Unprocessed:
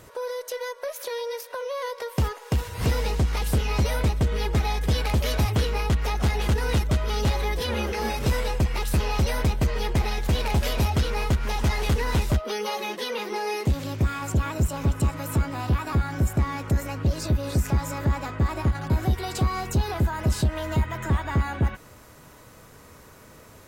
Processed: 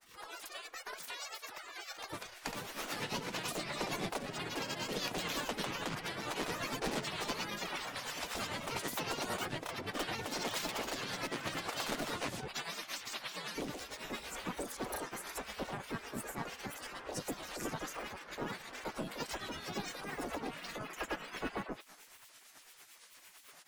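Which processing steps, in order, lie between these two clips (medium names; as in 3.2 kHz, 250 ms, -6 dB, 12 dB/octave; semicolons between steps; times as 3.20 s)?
granulator, grains 27 per s, pitch spread up and down by 7 st; in parallel at +1 dB: compression, threshold -35 dBFS, peak gain reduction 14.5 dB; on the sum: tremolo 8.9 Hz, depth 49%; spectral gate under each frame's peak -15 dB weak; trim -3.5 dB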